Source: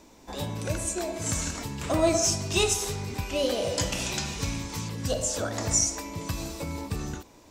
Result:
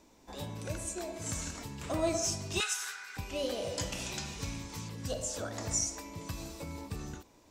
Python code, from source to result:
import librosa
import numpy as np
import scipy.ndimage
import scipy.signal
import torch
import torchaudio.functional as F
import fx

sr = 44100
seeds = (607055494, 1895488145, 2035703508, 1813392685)

y = fx.highpass_res(x, sr, hz=1500.0, q=9.4, at=(2.6, 3.17))
y = F.gain(torch.from_numpy(y), -8.0).numpy()